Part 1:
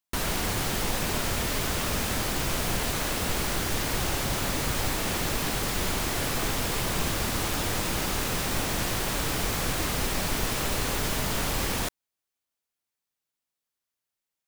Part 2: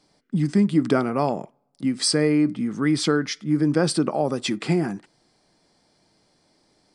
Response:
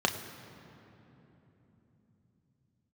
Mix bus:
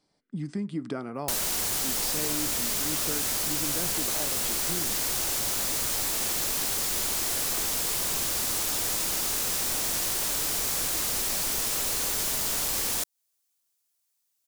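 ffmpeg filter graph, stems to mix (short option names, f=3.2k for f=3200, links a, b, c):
-filter_complex "[0:a]bass=f=250:g=-7,treble=f=4k:g=12,adelay=1150,volume=0.5dB[a];[1:a]volume=-10dB[b];[a][b]amix=inputs=2:normalize=0,acompressor=threshold=-30dB:ratio=2"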